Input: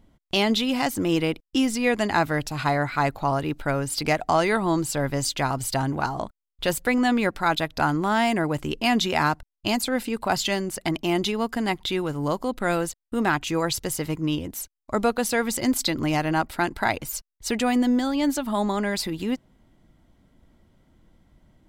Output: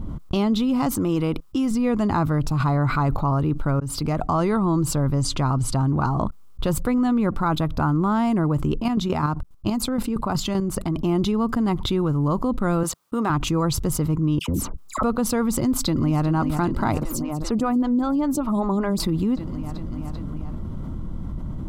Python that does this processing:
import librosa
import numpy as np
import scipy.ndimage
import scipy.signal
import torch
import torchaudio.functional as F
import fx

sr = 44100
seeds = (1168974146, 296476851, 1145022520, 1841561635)

y = fx.low_shelf(x, sr, hz=400.0, db=-8.0, at=(0.92, 1.71))
y = fx.env_flatten(y, sr, amount_pct=50, at=(2.6, 3.17))
y = fx.lowpass(y, sr, hz=11000.0, slope=24, at=(5.22, 5.92))
y = fx.dynamic_eq(y, sr, hz=4700.0, q=1.1, threshold_db=-41.0, ratio=4.0, max_db=-4, at=(7.1, 7.96))
y = fx.chopper(y, sr, hz=fx.line((8.78, 8.7), (10.96, 4.2)), depth_pct=65, duty_pct=25, at=(8.78, 10.96), fade=0.02)
y = fx.highpass(y, sr, hz=670.0, slope=6, at=(12.83, 13.3))
y = fx.dispersion(y, sr, late='lows', ms=92.0, hz=1500.0, at=(14.39, 15.03))
y = fx.echo_throw(y, sr, start_s=15.57, length_s=0.69, ms=390, feedback_pct=75, wet_db=-13.5)
y = fx.stagger_phaser(y, sr, hz=5.1, at=(17.01, 19.0))
y = fx.edit(y, sr, fx.fade_in_span(start_s=3.8, length_s=0.62), tone=tone)
y = fx.curve_eq(y, sr, hz=(160.0, 740.0, 1200.0, 1700.0, 3800.0), db=(0, -13, -4, -21, -19))
y = fx.env_flatten(y, sr, amount_pct=70)
y = F.gain(torch.from_numpy(y), 3.5).numpy()